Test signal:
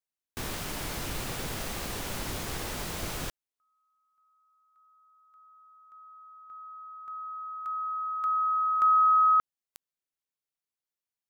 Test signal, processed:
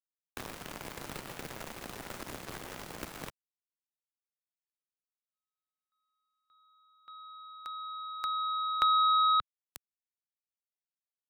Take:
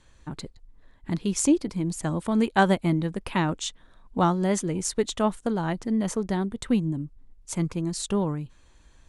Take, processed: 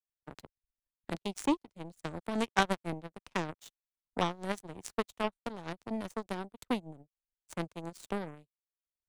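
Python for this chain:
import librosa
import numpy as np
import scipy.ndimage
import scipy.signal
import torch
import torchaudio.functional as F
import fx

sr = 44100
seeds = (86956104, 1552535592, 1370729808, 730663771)

y = fx.power_curve(x, sr, exponent=3.0)
y = fx.band_squash(y, sr, depth_pct=70)
y = y * librosa.db_to_amplitude(8.0)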